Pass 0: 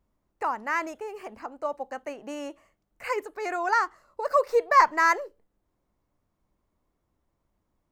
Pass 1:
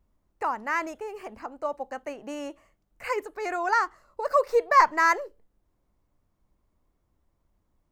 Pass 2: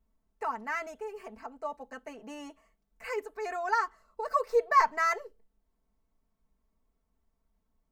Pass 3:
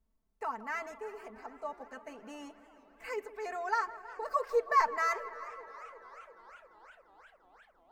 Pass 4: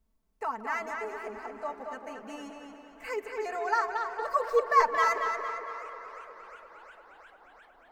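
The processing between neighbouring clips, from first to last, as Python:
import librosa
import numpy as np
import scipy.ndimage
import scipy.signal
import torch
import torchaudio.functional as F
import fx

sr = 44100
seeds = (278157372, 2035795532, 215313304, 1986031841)

y1 = fx.low_shelf(x, sr, hz=90.0, db=7.5)
y2 = y1 + 0.91 * np.pad(y1, (int(4.5 * sr / 1000.0), 0))[:len(y1)]
y2 = y2 * 10.0 ** (-8.0 / 20.0)
y3 = fx.echo_wet_lowpass(y2, sr, ms=161, feedback_pct=75, hz=2800.0, wet_db=-17.0)
y3 = fx.echo_warbled(y3, sr, ms=350, feedback_pct=77, rate_hz=2.8, cents=144, wet_db=-21.5)
y3 = y3 * 10.0 ** (-3.5 / 20.0)
y4 = fx.echo_tape(y3, sr, ms=227, feedback_pct=54, wet_db=-4.0, lp_hz=5300.0, drive_db=22.0, wow_cents=17)
y4 = y4 * 10.0 ** (3.5 / 20.0)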